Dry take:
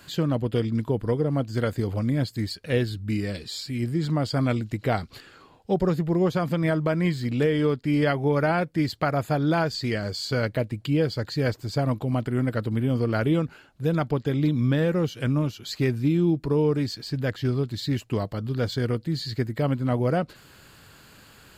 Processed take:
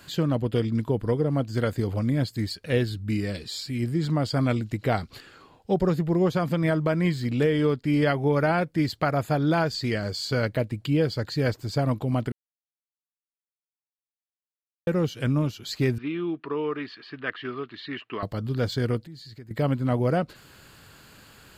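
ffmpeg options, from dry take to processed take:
ffmpeg -i in.wav -filter_complex "[0:a]asettb=1/sr,asplit=3[link_01][link_02][link_03];[link_01]atrim=end=15.984[link_04];[link_02]atrim=start=15.98:end=18.23,asetpts=PTS-STARTPTS,afade=type=in:duration=0.004:curve=qsin,afade=type=out:start_time=2.246:duration=0.004:curve=qsin,highpass=400,equalizer=frequency=540:width_type=q:width=4:gain=-10,equalizer=frequency=820:width_type=q:width=4:gain=-5,equalizer=frequency=1200:width_type=q:width=4:gain=9,equalizer=frequency=1800:width_type=q:width=4:gain=5,equalizer=frequency=2800:width_type=q:width=4:gain=5,lowpass=frequency=3300:width=0.5412,lowpass=frequency=3300:width=1.3066[link_05];[link_03]atrim=start=18.226[link_06];[link_04][link_05]acrossfade=duration=0.004:curve1=hsin:curve2=qsin[link_07];[link_07][link_06]acrossfade=duration=0.004:curve1=qsin:curve2=hsin,asettb=1/sr,asplit=3[link_08][link_09][link_10];[link_08]atrim=end=19.004[link_11];[link_09]atrim=start=19:end=19.51,asetpts=PTS-STARTPTS,afade=type=in:duration=0.004:curve=qsin,afade=type=out:start_time=0.506:duration=0.004:curve=qsin,acompressor=threshold=-48dB:ratio=2.5:attack=3.2:release=140:knee=1:detection=peak[link_12];[link_10]atrim=start=19.506[link_13];[link_11][link_12]acrossfade=duration=0.004:curve1=hsin:curve2=qsin[link_14];[link_14][link_13]acrossfade=duration=0.004:curve1=qsin:curve2=hsin,asplit=3[link_15][link_16][link_17];[link_15]atrim=end=12.32,asetpts=PTS-STARTPTS,afade=type=out:start_time=12.316:duration=0.004:curve=hsin[link_18];[link_16]atrim=start=12.32:end=14.87,asetpts=PTS-STARTPTS,volume=0[link_19];[link_17]atrim=start=14.87,asetpts=PTS-STARTPTS,afade=type=in:duration=0.004:curve=hsin[link_20];[link_18][link_19][link_20]concat=n=3:v=0:a=1" out.wav

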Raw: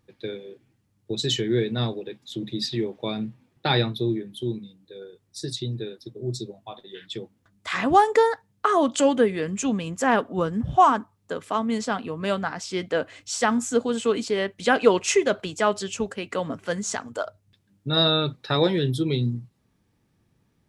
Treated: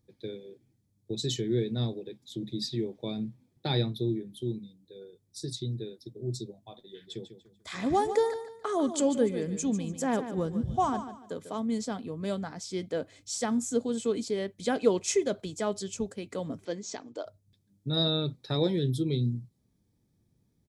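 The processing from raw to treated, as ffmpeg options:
ffmpeg -i in.wav -filter_complex "[0:a]asplit=3[link_01][link_02][link_03];[link_01]afade=type=out:start_time=7.06:duration=0.02[link_04];[link_02]aecho=1:1:146|292|438:0.282|0.0846|0.0254,afade=type=in:start_time=7.06:duration=0.02,afade=type=out:start_time=11.59:duration=0.02[link_05];[link_03]afade=type=in:start_time=11.59:duration=0.02[link_06];[link_04][link_05][link_06]amix=inputs=3:normalize=0,asettb=1/sr,asplit=3[link_07][link_08][link_09];[link_07]atrim=end=16.654[link_10];[link_08]atrim=start=16.65:end=17.26,asetpts=PTS-STARTPTS,afade=type=in:duration=0.004:curve=qsin,afade=type=out:start_time=0.606:duration=0.004:curve=qsin,highpass=210,equalizer=frequency=210:width_type=q:width=4:gain=-6,equalizer=frequency=320:width_type=q:width=4:gain=8,equalizer=frequency=1400:width_type=q:width=4:gain=-4,equalizer=frequency=2500:width_type=q:width=4:gain=4,lowpass=frequency=5800:width=0.5412,lowpass=frequency=5800:width=1.3066[link_11];[link_09]atrim=start=17.256[link_12];[link_10][link_11]acrossfade=duration=0.004:curve1=hsin:curve2=qsin[link_13];[link_13][link_12]acrossfade=duration=0.004:curve1=qsin:curve2=hsin,equalizer=frequency=1400:width_type=o:width=2.1:gain=-12.5,bandreject=frequency=2800:width=6.4,volume=-3dB" out.wav

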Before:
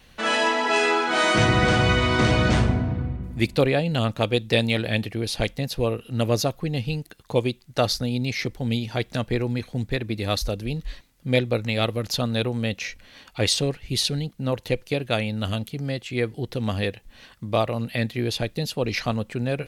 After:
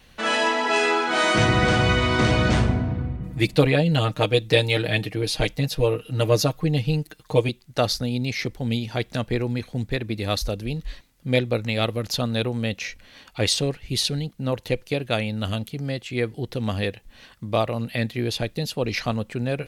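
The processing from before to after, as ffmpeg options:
ffmpeg -i in.wav -filter_complex "[0:a]asettb=1/sr,asplit=3[link_01][link_02][link_03];[link_01]atrim=end=3.204[link_04];[link_02]atrim=start=3.2:end=7.49,asetpts=PTS-STARTPTS,afade=type=in:duration=0.004:curve=qsin,afade=type=out:start_time=4.286:duration=0.004:curve=qsin,aecho=1:1:6.5:0.82,atrim=end_sample=189189[link_05];[link_03]atrim=start=7.486[link_06];[link_04][link_05]acrossfade=duration=0.004:curve1=hsin:curve2=qsin[link_07];[link_07][link_06]acrossfade=duration=0.004:curve1=qsin:curve2=hsin" out.wav

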